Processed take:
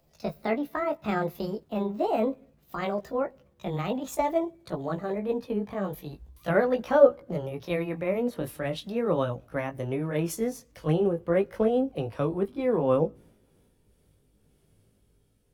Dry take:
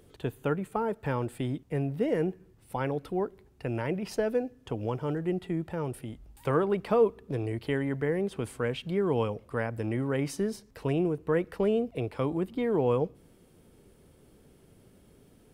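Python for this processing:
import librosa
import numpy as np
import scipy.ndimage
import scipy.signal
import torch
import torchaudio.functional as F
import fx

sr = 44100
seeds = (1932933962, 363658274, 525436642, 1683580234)

y = fx.pitch_glide(x, sr, semitones=7.0, runs='ending unshifted')
y = fx.dynamic_eq(y, sr, hz=3200.0, q=0.74, threshold_db=-50.0, ratio=4.0, max_db=-4)
y = fx.chorus_voices(y, sr, voices=2, hz=0.42, base_ms=19, depth_ms=1.3, mix_pct=30)
y = fx.band_widen(y, sr, depth_pct=40)
y = y * 10.0 ** (5.5 / 20.0)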